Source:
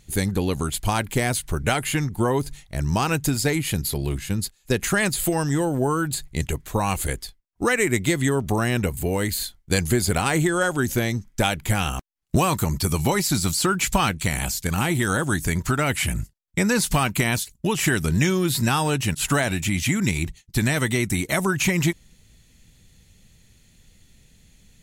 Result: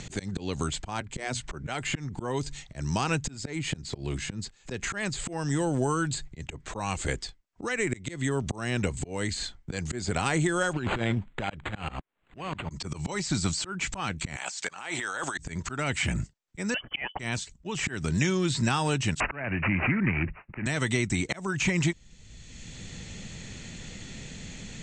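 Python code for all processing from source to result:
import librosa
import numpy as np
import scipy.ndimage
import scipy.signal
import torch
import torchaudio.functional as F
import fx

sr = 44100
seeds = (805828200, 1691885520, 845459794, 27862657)

y = fx.chain(x, sr, fx.hum_notches(base_hz=60, count=4),
    fx.band_widen(depth_pct=100), at=(1.0, 1.4))
y = fx.chain(y, sr, fx.high_shelf(hz=12000.0, db=5.0),
    fx.over_compress(threshold_db=-25.0, ratio=-0.5),
    fx.resample_linear(factor=8), at=(10.73, 12.71))
y = fx.chain(y, sr, fx.highpass(hz=690.0, slope=12),
    fx.over_compress(threshold_db=-34.0, ratio=-1.0), at=(14.36, 15.38))
y = fx.chain(y, sr, fx.envelope_sharpen(power=1.5),
    fx.highpass(hz=340.0, slope=12),
    fx.freq_invert(carrier_hz=3200), at=(16.74, 17.19))
y = fx.chain(y, sr, fx.resample_bad(factor=8, down='none', up='filtered'),
    fx.band_squash(depth_pct=40), at=(19.2, 20.66))
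y = scipy.signal.sosfilt(scipy.signal.cheby1(6, 1.0, 8100.0, 'lowpass', fs=sr, output='sos'), y)
y = fx.auto_swell(y, sr, attack_ms=420.0)
y = fx.band_squash(y, sr, depth_pct=70)
y = y * 10.0 ** (-1.0 / 20.0)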